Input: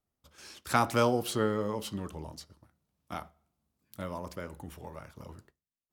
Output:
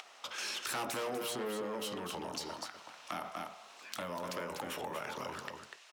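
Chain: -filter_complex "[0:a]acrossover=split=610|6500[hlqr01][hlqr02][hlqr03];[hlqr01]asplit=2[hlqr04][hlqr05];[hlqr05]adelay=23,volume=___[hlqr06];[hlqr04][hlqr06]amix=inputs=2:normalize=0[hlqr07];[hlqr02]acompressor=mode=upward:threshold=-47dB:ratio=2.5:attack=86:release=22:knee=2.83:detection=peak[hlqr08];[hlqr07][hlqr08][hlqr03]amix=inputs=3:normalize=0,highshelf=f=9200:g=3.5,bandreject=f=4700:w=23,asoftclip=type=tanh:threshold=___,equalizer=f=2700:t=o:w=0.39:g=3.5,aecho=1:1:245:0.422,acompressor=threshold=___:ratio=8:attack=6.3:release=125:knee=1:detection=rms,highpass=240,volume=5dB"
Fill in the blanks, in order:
-3dB, -29.5dB, -39dB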